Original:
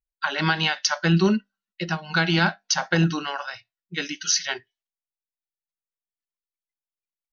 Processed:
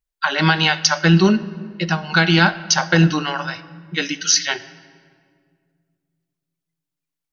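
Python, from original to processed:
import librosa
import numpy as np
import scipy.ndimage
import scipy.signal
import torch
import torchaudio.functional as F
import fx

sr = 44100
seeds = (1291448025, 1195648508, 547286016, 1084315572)

y = fx.room_shoebox(x, sr, seeds[0], volume_m3=3900.0, walls='mixed', distance_m=0.47)
y = y * librosa.db_to_amplitude(6.0)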